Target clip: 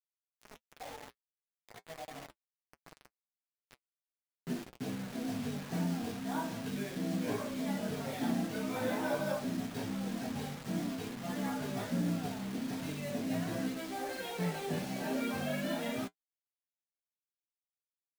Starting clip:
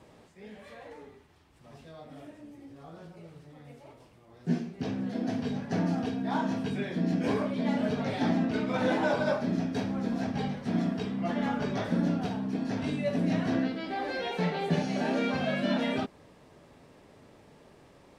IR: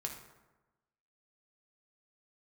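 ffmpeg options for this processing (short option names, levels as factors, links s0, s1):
-filter_complex "[0:a]flanger=delay=15:depth=7.4:speed=0.43,asettb=1/sr,asplit=3[s0][s1][s2];[s0]atrim=end=0.804[s3];[s1]atrim=start=0.8:end=2.27,asetpts=PTS-STARTPTS,afade=t=in:d=0.004:c=qsin,afade=t=out:st=1.466:d=0.004:c=qsin,lowpass=f=780:t=q:w=4.9[s4];[s2]atrim=start=2.266[s5];[s3][s4]acrossfade=d=0.004:c1=hsin:c2=qsin[s6];[s6][s5]acrossfade=d=0.004:c1=qsin:c2=hsin,acrusher=bits=6:mix=0:aa=0.000001,flanger=delay=6.1:depth=2.4:regen=-47:speed=1.4:shape=sinusoidal"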